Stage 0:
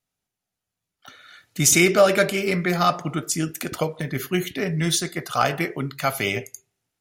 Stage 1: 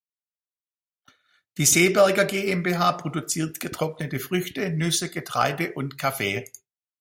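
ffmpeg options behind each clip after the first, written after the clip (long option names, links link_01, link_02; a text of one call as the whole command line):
ffmpeg -i in.wav -af "agate=range=-33dB:threshold=-36dB:ratio=3:detection=peak,volume=-1.5dB" out.wav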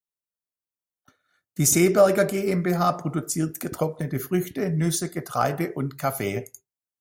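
ffmpeg -i in.wav -af "equalizer=frequency=3000:width=0.78:gain=-13.5,volume=2dB" out.wav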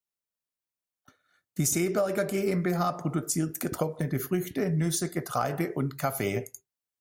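ffmpeg -i in.wav -af "acompressor=threshold=-23dB:ratio=10" out.wav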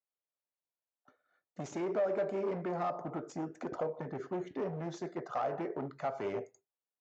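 ffmpeg -i in.wav -af "aresample=16000,asoftclip=type=hard:threshold=-26.5dB,aresample=44100,bandpass=frequency=640:width_type=q:width=1.1:csg=0" out.wav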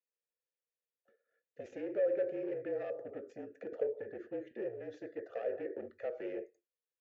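ffmpeg -i in.wav -filter_complex "[0:a]asplit=3[link_01][link_02][link_03];[link_01]bandpass=frequency=530:width_type=q:width=8,volume=0dB[link_04];[link_02]bandpass=frequency=1840:width_type=q:width=8,volume=-6dB[link_05];[link_03]bandpass=frequency=2480:width_type=q:width=8,volume=-9dB[link_06];[link_04][link_05][link_06]amix=inputs=3:normalize=0,afreqshift=-43,volume=7dB" out.wav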